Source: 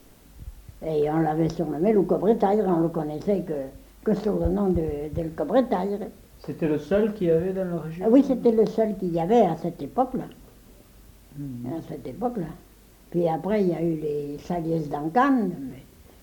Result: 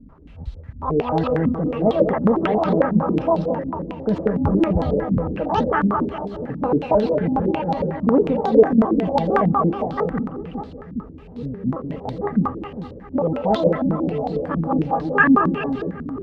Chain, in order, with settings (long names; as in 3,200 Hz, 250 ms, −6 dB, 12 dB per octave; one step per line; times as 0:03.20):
pitch shifter gated in a rhythm +8.5 semitones, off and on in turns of 112 ms
low-shelf EQ 150 Hz +11 dB
in parallel at +2.5 dB: brickwall limiter −14.5 dBFS, peak gain reduction 10 dB
on the sum: notch comb filter 360 Hz
on a send: echo with a time of its own for lows and highs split 420 Hz, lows 408 ms, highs 200 ms, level −5.5 dB
on the sum: low-pass on a step sequencer 11 Hz 230–4,000 Hz
level −6.5 dB